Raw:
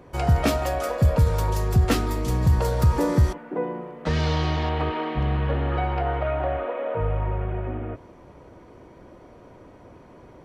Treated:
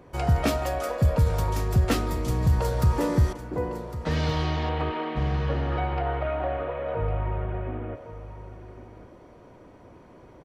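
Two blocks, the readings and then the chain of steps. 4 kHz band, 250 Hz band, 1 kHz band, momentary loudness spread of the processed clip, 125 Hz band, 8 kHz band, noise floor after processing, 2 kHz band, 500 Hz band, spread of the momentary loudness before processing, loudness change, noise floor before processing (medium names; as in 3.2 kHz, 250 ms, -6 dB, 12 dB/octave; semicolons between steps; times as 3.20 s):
-2.5 dB, -2.5 dB, -2.5 dB, 15 LU, -2.5 dB, -2.5 dB, -51 dBFS, -2.5 dB, -2.5 dB, 9 LU, -2.5 dB, -48 dBFS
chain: delay 1106 ms -14 dB; trim -2.5 dB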